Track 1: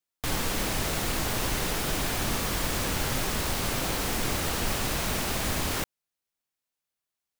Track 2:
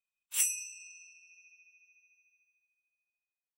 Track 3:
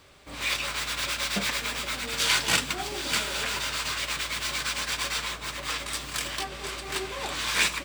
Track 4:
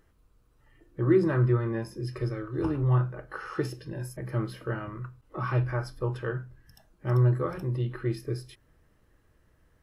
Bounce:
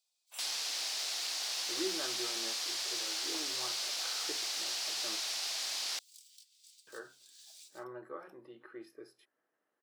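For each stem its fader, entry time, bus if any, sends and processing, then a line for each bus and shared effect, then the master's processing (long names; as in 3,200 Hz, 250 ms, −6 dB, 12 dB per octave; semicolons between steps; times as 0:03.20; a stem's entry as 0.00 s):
+2.5 dB, 0.15 s, no send, resonant band-pass 4,800 Hz, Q 2.2
−10.0 dB, 0.00 s, no send, parametric band 640 Hz +13.5 dB 2.9 octaves; downward compressor 2 to 1, threshold −41 dBFS, peak gain reduction 10 dB
−18.5 dB, 0.00 s, no send, inverse Chebyshev high-pass filter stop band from 740 Hz, stop band 80 dB; downward compressor, threshold −34 dBFS, peak gain reduction 10 dB
−16.0 dB, 0.70 s, muted 0:05.28–0:06.87, no send, parametric band 1,500 Hz +5.5 dB 0.77 octaves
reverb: not used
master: high-pass filter 270 Hz 24 dB per octave; parametric band 720 Hz +7 dB 0.59 octaves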